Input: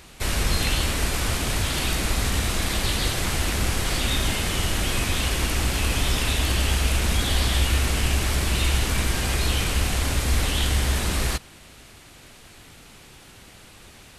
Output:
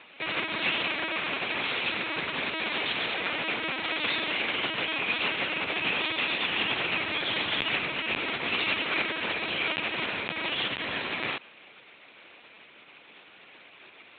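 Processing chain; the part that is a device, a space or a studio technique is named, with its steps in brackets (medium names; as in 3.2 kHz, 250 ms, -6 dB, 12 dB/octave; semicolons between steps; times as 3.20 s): talking toy (LPC vocoder at 8 kHz pitch kept; high-pass 360 Hz 12 dB/octave; peaking EQ 2.4 kHz +6.5 dB 0.38 oct); trim -3 dB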